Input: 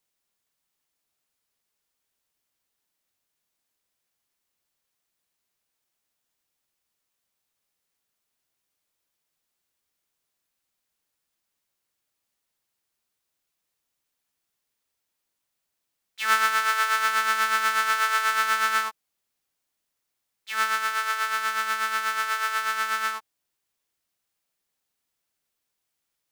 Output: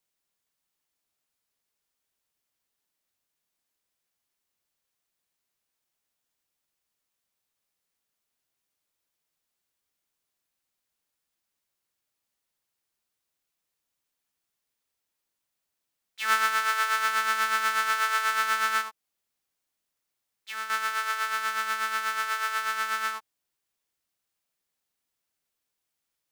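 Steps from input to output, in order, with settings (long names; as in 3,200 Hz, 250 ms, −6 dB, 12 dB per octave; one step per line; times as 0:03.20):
0:18.81–0:20.70: downward compressor 2.5 to 1, threshold −32 dBFS, peak gain reduction 9 dB
level −2.5 dB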